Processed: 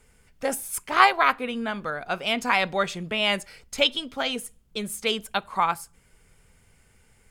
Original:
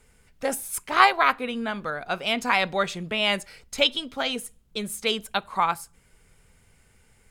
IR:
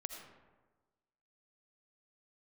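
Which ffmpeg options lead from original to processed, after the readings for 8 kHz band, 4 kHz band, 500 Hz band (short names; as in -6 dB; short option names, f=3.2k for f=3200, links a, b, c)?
0.0 dB, -0.5 dB, 0.0 dB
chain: -af "bandreject=f=3.9k:w=20"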